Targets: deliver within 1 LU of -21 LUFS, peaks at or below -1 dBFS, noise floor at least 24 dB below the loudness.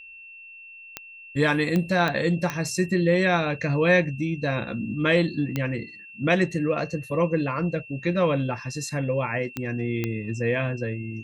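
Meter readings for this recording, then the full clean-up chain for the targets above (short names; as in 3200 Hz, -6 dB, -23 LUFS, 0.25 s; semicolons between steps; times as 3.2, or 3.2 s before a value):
clicks 7; steady tone 2700 Hz; tone level -42 dBFS; loudness -25.0 LUFS; peak -8.0 dBFS; loudness target -21.0 LUFS
-> de-click; notch 2700 Hz, Q 30; gain +4 dB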